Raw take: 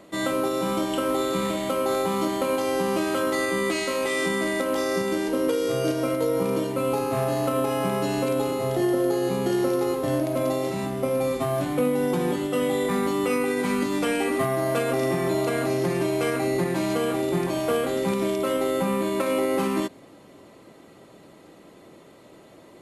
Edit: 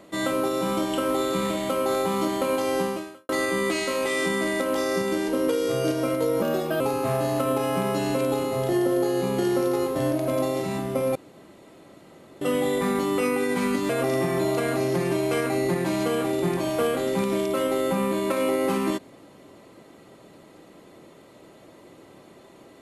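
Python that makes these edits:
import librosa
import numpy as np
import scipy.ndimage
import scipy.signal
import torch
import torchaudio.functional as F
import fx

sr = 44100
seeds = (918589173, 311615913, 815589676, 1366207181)

y = fx.edit(x, sr, fx.fade_out_span(start_s=2.82, length_s=0.47, curve='qua'),
    fx.speed_span(start_s=6.42, length_s=0.46, speed=1.2),
    fx.room_tone_fill(start_s=11.23, length_s=1.26),
    fx.cut(start_s=13.97, length_s=0.82), tone=tone)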